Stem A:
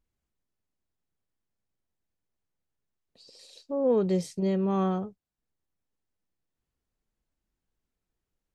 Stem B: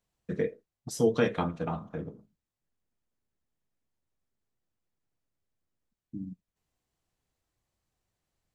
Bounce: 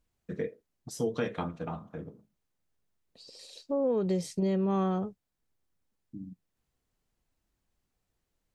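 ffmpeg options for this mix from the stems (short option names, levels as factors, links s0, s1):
-filter_complex "[0:a]volume=1.33[s0];[1:a]volume=0.631[s1];[s0][s1]amix=inputs=2:normalize=0,acompressor=threshold=0.0562:ratio=6"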